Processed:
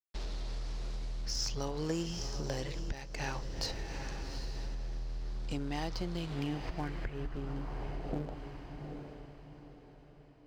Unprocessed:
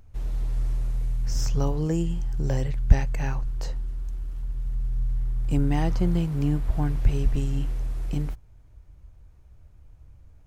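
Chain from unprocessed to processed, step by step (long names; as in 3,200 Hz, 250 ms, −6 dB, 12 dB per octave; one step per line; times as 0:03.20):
low-pass filter sweep 4,600 Hz → 650 Hz, 0:06.13–0:08.15
dead-zone distortion −41 dBFS
feedback delay with all-pass diffusion 797 ms, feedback 40%, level −13 dB
downward compressor 10 to 1, threshold −31 dBFS, peak gain reduction 23 dB
bass and treble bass −10 dB, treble +5 dB
level +5.5 dB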